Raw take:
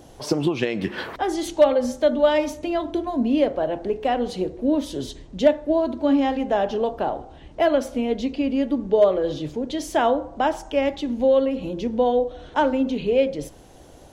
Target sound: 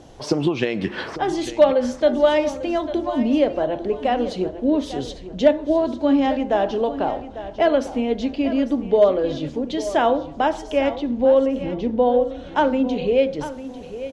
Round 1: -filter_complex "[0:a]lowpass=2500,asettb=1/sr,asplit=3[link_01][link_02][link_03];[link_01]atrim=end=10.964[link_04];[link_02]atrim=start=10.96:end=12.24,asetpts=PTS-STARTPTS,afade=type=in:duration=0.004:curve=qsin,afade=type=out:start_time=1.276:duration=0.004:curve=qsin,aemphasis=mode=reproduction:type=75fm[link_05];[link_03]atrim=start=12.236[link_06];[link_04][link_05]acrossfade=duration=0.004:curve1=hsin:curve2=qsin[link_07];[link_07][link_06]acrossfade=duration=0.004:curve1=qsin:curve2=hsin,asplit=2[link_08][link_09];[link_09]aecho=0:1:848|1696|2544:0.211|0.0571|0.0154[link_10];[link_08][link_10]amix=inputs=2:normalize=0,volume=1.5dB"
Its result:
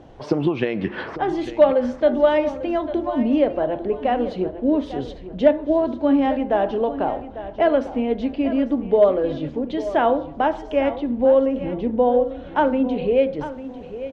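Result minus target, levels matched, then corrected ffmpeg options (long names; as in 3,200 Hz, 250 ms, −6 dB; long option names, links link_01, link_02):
8,000 Hz band −15.0 dB
-filter_complex "[0:a]lowpass=6900,asettb=1/sr,asplit=3[link_01][link_02][link_03];[link_01]atrim=end=10.964[link_04];[link_02]atrim=start=10.96:end=12.24,asetpts=PTS-STARTPTS,afade=type=in:duration=0.004:curve=qsin,afade=type=out:start_time=1.276:duration=0.004:curve=qsin,aemphasis=mode=reproduction:type=75fm[link_05];[link_03]atrim=start=12.236[link_06];[link_04][link_05]acrossfade=duration=0.004:curve1=hsin:curve2=qsin[link_07];[link_07][link_06]acrossfade=duration=0.004:curve1=qsin:curve2=hsin,asplit=2[link_08][link_09];[link_09]aecho=0:1:848|1696|2544:0.211|0.0571|0.0154[link_10];[link_08][link_10]amix=inputs=2:normalize=0,volume=1.5dB"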